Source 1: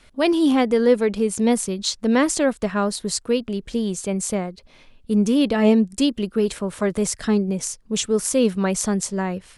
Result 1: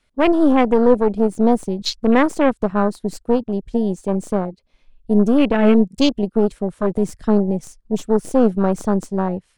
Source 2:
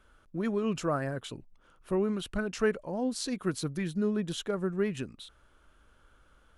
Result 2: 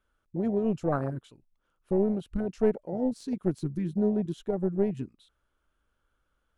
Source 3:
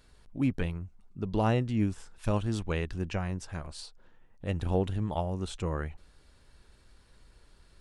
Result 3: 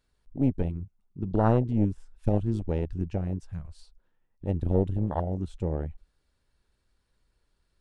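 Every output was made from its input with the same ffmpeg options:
-af "aeval=exprs='0.668*(cos(1*acos(clip(val(0)/0.668,-1,1)))-cos(1*PI/2))+0.0422*(cos(4*acos(clip(val(0)/0.668,-1,1)))-cos(4*PI/2))+0.0473*(cos(8*acos(clip(val(0)/0.668,-1,1)))-cos(8*PI/2))':c=same,afwtdn=0.0447,volume=2.5dB"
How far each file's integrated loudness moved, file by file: +3.0, +2.5, +3.5 LU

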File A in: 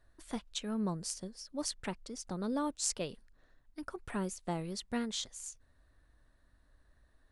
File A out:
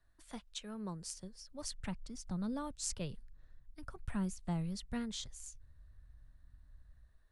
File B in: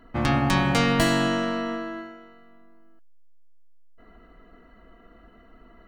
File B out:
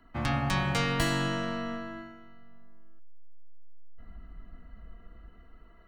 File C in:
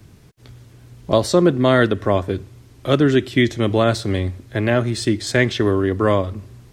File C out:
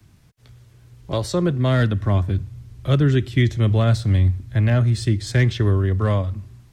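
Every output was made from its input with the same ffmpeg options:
-filter_complex "[0:a]acrossover=split=160|770|2000[a][b][c][d];[a]dynaudnorm=f=980:g=3:m=15dB[e];[b]flanger=delay=0.9:depth=1.5:regen=-50:speed=0.46:shape=triangular[f];[c]asoftclip=type=hard:threshold=-20.5dB[g];[e][f][g][d]amix=inputs=4:normalize=0,volume=-5.5dB"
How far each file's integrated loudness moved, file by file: -4.0, -6.5, -1.5 LU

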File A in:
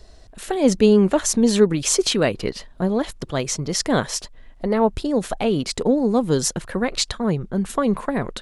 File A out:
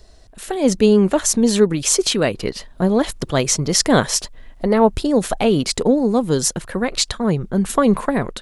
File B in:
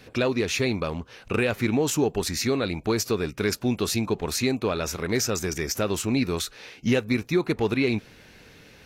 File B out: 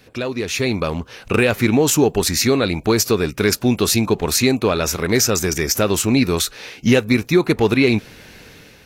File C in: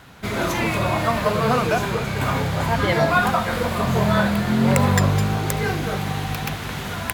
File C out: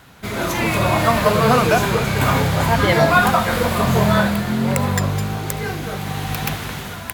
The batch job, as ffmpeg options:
-af "crystalizer=i=0.5:c=0,dynaudnorm=f=260:g=5:m=11dB,volume=-1dB"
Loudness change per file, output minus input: +3.0, +8.0, +3.0 LU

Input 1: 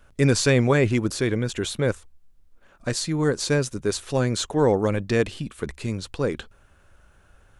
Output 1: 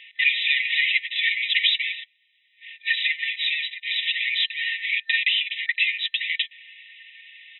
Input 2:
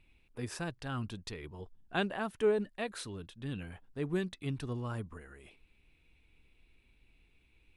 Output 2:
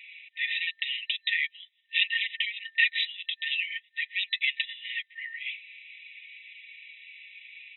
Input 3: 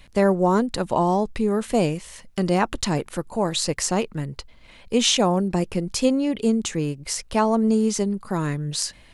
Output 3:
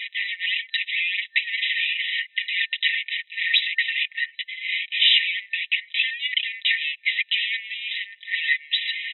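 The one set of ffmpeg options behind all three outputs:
-filter_complex "[0:a]asplit=2[a][b];[b]highpass=f=720:p=1,volume=33dB,asoftclip=type=tanh:threshold=-5.5dB[c];[a][c]amix=inputs=2:normalize=0,lowpass=f=2.3k:p=1,volume=-6dB,aecho=1:1:4.9:0.93,afftfilt=real='re*between(b*sr/4096,1800,4000)':imag='im*between(b*sr/4096,1800,4000)':win_size=4096:overlap=0.75"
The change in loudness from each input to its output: +1.5, +9.0, 0.0 LU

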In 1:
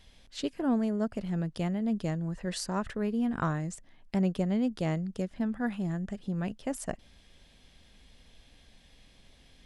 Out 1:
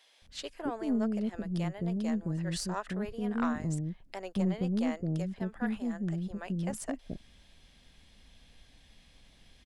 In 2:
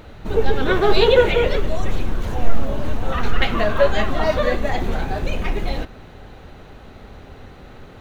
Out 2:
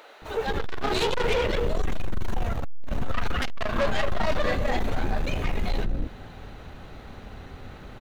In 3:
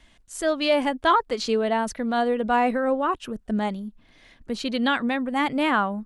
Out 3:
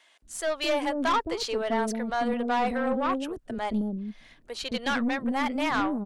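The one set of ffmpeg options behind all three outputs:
-filter_complex "[0:a]acrossover=split=440[a][b];[a]adelay=220[c];[c][b]amix=inputs=2:normalize=0,aeval=exprs='(tanh(10*val(0)+0.3)-tanh(0.3))/10':c=same"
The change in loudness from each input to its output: -2.0, -8.0, -4.5 LU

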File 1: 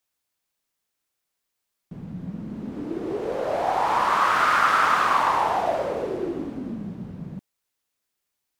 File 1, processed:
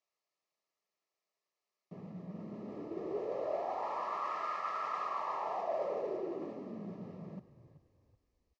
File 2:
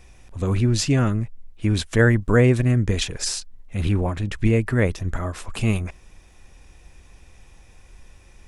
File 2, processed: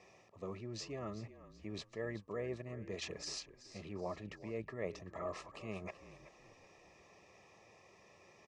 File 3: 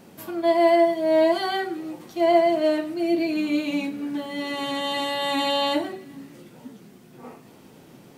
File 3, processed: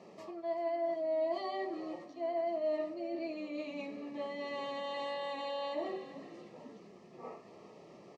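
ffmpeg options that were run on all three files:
-filter_complex "[0:a]areverse,acompressor=threshold=-31dB:ratio=10,areverse,asuperstop=centerf=1500:order=20:qfactor=5.3,highpass=f=130:w=0.5412,highpass=f=130:w=1.3066,equalizer=f=140:t=q:w=4:g=-7,equalizer=f=260:t=q:w=4:g=-8,equalizer=f=410:t=q:w=4:g=5,equalizer=f=620:t=q:w=4:g=8,equalizer=f=1.2k:t=q:w=4:g=5,equalizer=f=3.4k:t=q:w=4:g=-7,lowpass=f=6k:w=0.5412,lowpass=f=6k:w=1.3066,asplit=4[a][b][c][d];[b]adelay=379,afreqshift=-43,volume=-14.5dB[e];[c]adelay=758,afreqshift=-86,volume=-23.1dB[f];[d]adelay=1137,afreqshift=-129,volume=-31.8dB[g];[a][e][f][g]amix=inputs=4:normalize=0,volume=-6.5dB"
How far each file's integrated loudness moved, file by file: -16.0, -23.0, -15.0 LU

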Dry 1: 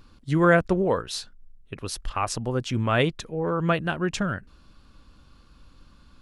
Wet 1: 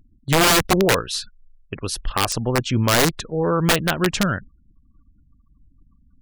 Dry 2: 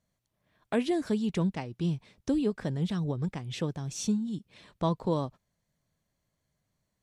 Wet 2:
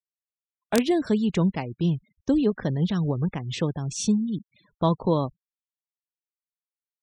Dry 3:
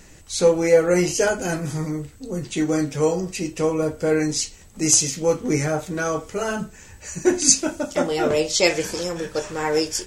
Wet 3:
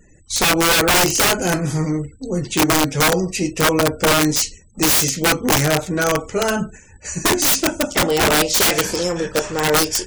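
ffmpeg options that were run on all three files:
-af "aeval=exprs='(mod(5.96*val(0)+1,2)-1)/5.96':c=same,afftfilt=real='re*gte(hypot(re,im),0.00501)':imag='im*gte(hypot(re,im),0.00501)':win_size=1024:overlap=0.75,agate=range=-8dB:threshold=-41dB:ratio=16:detection=peak,volume=6dB"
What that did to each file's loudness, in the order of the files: +5.5, +6.0, +4.5 LU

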